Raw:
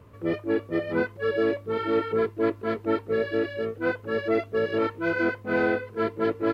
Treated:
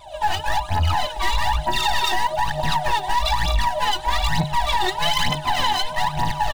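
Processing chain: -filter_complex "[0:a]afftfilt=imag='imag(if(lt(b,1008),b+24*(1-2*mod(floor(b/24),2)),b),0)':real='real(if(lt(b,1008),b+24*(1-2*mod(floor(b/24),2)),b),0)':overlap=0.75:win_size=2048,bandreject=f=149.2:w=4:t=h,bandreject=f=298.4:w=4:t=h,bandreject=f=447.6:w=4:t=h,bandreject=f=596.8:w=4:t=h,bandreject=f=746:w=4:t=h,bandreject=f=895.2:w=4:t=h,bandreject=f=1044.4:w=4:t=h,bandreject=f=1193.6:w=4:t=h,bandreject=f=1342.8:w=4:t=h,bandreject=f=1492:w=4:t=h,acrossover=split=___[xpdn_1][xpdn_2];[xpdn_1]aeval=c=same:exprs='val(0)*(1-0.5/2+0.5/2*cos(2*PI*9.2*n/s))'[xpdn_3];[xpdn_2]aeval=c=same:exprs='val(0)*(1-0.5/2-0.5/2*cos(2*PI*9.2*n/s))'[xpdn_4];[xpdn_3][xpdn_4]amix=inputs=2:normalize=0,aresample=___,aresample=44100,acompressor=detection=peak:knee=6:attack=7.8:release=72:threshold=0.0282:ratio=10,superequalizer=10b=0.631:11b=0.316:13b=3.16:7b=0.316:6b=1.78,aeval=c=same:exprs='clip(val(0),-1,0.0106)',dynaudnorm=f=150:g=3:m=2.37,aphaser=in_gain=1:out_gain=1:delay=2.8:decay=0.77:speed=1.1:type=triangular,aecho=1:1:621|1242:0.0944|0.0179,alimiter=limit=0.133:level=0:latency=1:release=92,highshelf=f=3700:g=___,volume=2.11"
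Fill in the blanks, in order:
840, 22050, 11.5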